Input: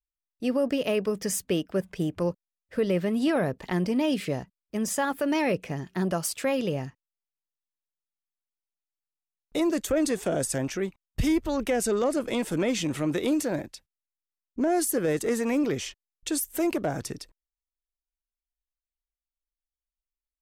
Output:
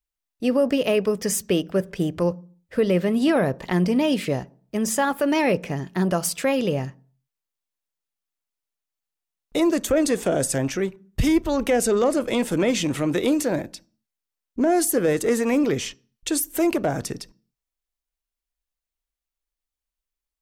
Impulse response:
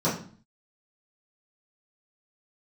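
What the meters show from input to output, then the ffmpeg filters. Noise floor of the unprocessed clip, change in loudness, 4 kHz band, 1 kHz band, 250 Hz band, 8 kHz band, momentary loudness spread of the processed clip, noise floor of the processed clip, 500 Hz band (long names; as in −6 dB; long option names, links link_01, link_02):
below −85 dBFS, +5.0 dB, +5.0 dB, +5.0 dB, +4.5 dB, +4.5 dB, 9 LU, below −85 dBFS, +5.5 dB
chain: -filter_complex "[0:a]asplit=2[link_01][link_02];[1:a]atrim=start_sample=2205,lowshelf=frequency=270:gain=-8.5[link_03];[link_02][link_03]afir=irnorm=-1:irlink=0,volume=-30.5dB[link_04];[link_01][link_04]amix=inputs=2:normalize=0,volume=5dB"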